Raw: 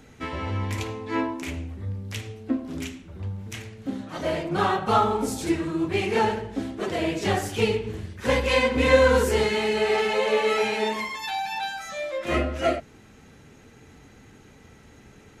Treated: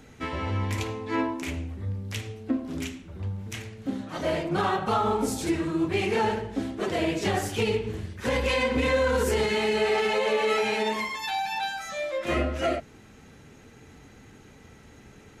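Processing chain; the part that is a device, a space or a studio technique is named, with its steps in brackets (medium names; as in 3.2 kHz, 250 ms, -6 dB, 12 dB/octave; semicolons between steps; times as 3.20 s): clipper into limiter (hard clipper -8 dBFS, distortion -36 dB; peak limiter -16 dBFS, peak gain reduction 8 dB)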